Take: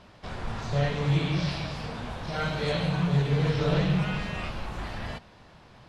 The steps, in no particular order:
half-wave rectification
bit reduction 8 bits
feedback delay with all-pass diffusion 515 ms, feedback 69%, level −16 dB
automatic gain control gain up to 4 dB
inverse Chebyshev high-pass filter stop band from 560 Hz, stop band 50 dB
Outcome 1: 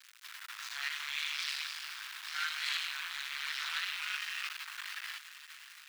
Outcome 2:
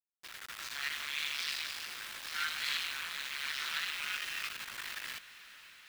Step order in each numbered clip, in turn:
automatic gain control, then bit reduction, then feedback delay with all-pass diffusion, then half-wave rectification, then inverse Chebyshev high-pass filter
half-wave rectification, then inverse Chebyshev high-pass filter, then bit reduction, then automatic gain control, then feedback delay with all-pass diffusion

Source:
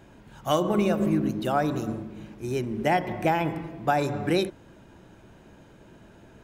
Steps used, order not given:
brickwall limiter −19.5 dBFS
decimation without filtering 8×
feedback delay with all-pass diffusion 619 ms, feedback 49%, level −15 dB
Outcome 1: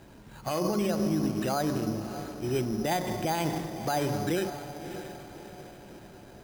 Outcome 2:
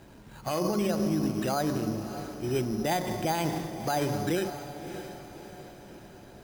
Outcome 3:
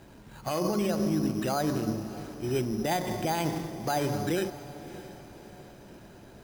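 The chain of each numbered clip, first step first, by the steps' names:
feedback delay with all-pass diffusion, then brickwall limiter, then decimation without filtering
decimation without filtering, then feedback delay with all-pass diffusion, then brickwall limiter
brickwall limiter, then decimation without filtering, then feedback delay with all-pass diffusion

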